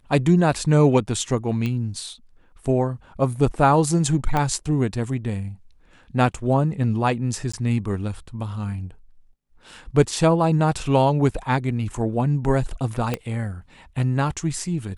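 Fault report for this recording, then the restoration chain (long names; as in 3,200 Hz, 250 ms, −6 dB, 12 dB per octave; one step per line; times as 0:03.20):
0:01.66: click −15 dBFS
0:04.37: click −10 dBFS
0:07.52–0:07.54: drop-out 15 ms
0:13.14: click −10 dBFS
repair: click removal
repair the gap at 0:07.52, 15 ms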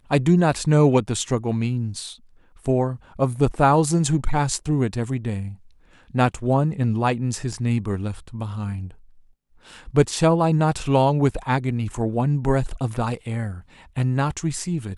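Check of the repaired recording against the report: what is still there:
0:04.37: click
0:13.14: click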